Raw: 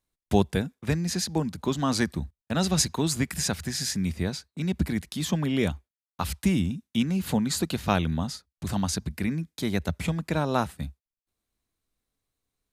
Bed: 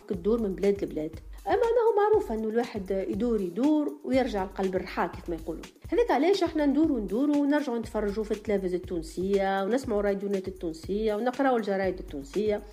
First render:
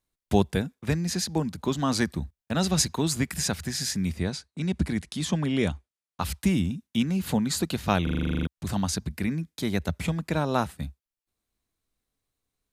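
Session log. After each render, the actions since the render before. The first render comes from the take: 4.19–6.22 s: steep low-pass 11 kHz 48 dB/octave; 8.03 s: stutter in place 0.04 s, 11 plays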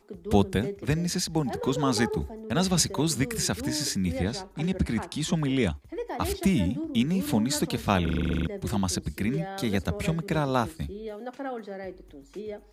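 add bed -10 dB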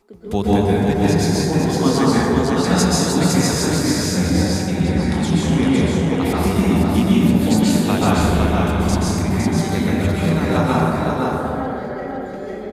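delay 509 ms -3.5 dB; plate-style reverb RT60 2.6 s, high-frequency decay 0.35×, pre-delay 115 ms, DRR -7.5 dB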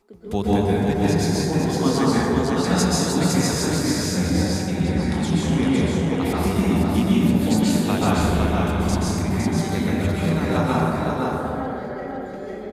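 trim -3.5 dB

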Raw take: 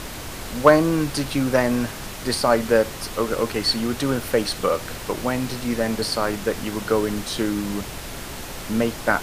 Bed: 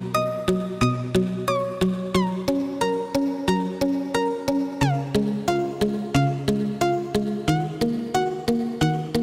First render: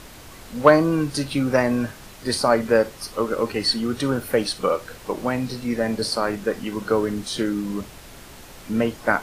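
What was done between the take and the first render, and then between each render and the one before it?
noise print and reduce 9 dB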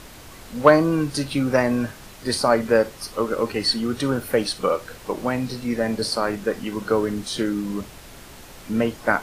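no audible change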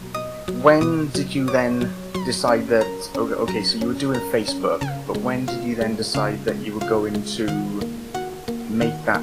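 add bed -6 dB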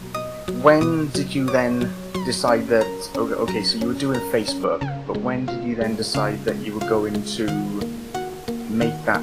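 4.64–5.84 s: distance through air 170 m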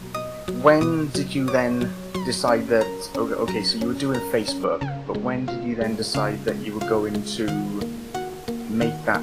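trim -1.5 dB

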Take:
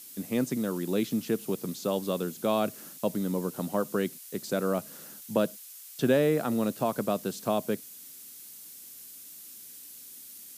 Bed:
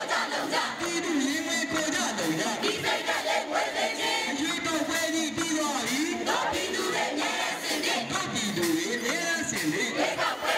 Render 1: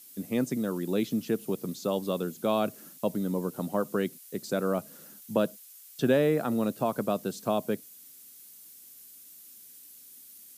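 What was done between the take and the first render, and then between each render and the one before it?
noise reduction 6 dB, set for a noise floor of -47 dBFS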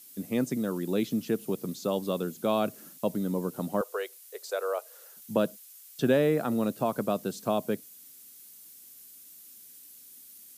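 3.81–5.17 s: elliptic high-pass 440 Hz, stop band 50 dB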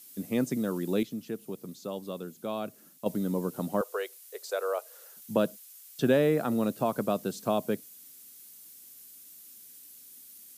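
1.03–3.06 s: gain -7.5 dB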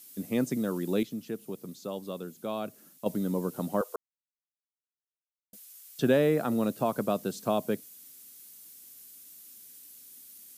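3.96–5.53 s: mute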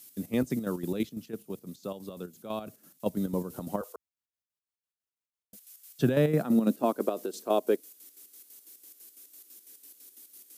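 square tremolo 6 Hz, depth 60%, duty 55%; high-pass sweep 69 Hz -> 360 Hz, 5.70–7.08 s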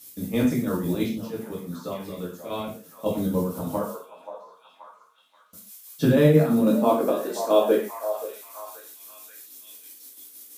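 repeats whose band climbs or falls 530 ms, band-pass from 730 Hz, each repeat 0.7 oct, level -8 dB; gated-style reverb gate 160 ms falling, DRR -5.5 dB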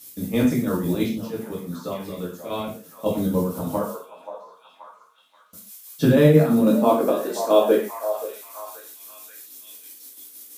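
trim +2.5 dB

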